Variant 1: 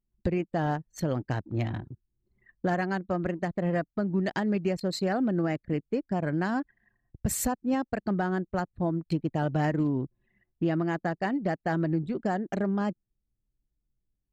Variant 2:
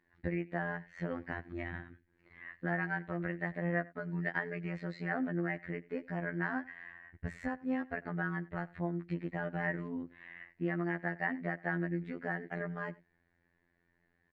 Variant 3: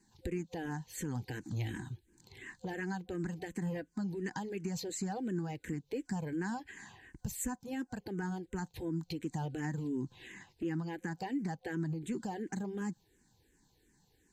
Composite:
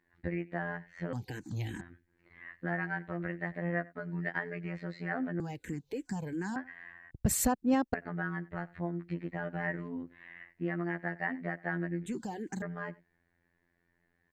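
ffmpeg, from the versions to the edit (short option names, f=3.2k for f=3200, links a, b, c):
-filter_complex "[2:a]asplit=3[a][b][c];[1:a]asplit=5[d][e][f][g][h];[d]atrim=end=1.132[i];[a]atrim=start=1.128:end=1.812[j];[e]atrim=start=1.808:end=5.402[k];[b]atrim=start=5.398:end=6.562[l];[f]atrim=start=6.558:end=7.112[m];[0:a]atrim=start=7.108:end=7.942[n];[g]atrim=start=7.938:end=12.062[o];[c]atrim=start=12.058:end=12.622[p];[h]atrim=start=12.618[q];[i][j]acrossfade=d=0.004:c1=hsin:c2=hsin[r];[r][k]acrossfade=d=0.004:c1=hsin:c2=hsin[s];[s][l]acrossfade=d=0.004:c1=hsin:c2=hsin[t];[t][m]acrossfade=d=0.004:c1=hsin:c2=hsin[u];[u][n]acrossfade=d=0.004:c1=hsin:c2=hsin[v];[v][o]acrossfade=d=0.004:c1=hsin:c2=hsin[w];[w][p]acrossfade=d=0.004:c1=hsin:c2=hsin[x];[x][q]acrossfade=d=0.004:c1=hsin:c2=hsin"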